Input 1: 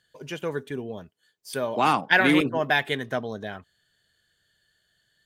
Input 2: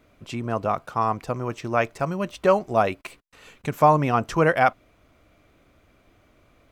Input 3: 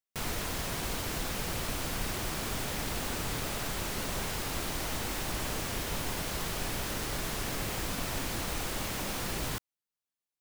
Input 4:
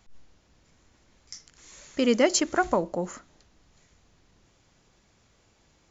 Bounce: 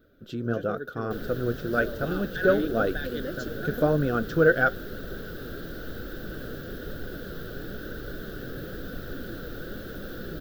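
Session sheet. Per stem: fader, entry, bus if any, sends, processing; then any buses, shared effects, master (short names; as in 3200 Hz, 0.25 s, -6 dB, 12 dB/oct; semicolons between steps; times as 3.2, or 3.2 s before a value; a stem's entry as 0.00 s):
-6.0 dB, 0.25 s, no send, limiter -13 dBFS, peak gain reduction 9 dB
+0.5 dB, 0.00 s, no send, dry
+2.5 dB, 0.95 s, no send, high shelf 3300 Hz -11.5 dB
-12.0 dB, 1.05 s, no send, dry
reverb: off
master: EQ curve 100 Hz 0 dB, 500 Hz +6 dB, 990 Hz -22 dB, 1500 Hz +9 dB, 2200 Hz -18 dB, 3600 Hz +1 dB, 9400 Hz -16 dB, 14000 Hz +8 dB; flange 1 Hz, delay 0.7 ms, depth 8 ms, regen +65%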